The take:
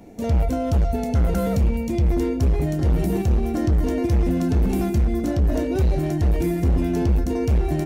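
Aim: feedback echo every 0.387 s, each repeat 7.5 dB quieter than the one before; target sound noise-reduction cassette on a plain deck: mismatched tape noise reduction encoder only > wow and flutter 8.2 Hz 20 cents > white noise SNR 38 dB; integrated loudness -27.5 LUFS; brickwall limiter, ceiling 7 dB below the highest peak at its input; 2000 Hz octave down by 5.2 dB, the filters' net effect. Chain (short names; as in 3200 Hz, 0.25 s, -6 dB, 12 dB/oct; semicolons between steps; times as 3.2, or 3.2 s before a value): bell 2000 Hz -6.5 dB; limiter -20.5 dBFS; feedback echo 0.387 s, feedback 42%, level -7.5 dB; mismatched tape noise reduction encoder only; wow and flutter 8.2 Hz 20 cents; white noise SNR 38 dB; gain -1 dB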